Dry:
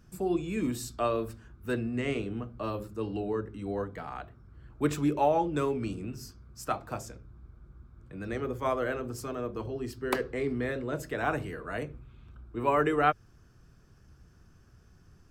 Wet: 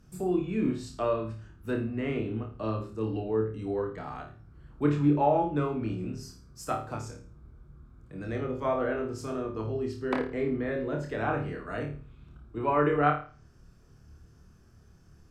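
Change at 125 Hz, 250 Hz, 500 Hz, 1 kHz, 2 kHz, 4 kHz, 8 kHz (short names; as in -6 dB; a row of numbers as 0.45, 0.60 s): +4.0, +2.5, +1.5, +0.5, -1.5, -3.5, -5.0 dB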